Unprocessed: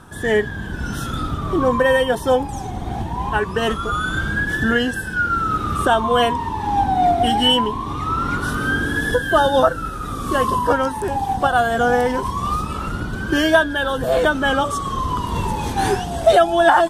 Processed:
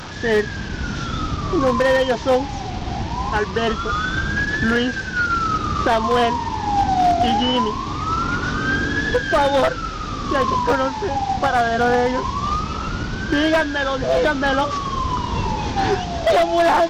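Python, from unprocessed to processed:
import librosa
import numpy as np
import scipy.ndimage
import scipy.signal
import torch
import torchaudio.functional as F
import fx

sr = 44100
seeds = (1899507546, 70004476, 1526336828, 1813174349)

y = fx.delta_mod(x, sr, bps=32000, step_db=-27.0)
y = 10.0 ** (-9.5 / 20.0) * (np.abs((y / 10.0 ** (-9.5 / 20.0) + 3.0) % 4.0 - 2.0) - 1.0)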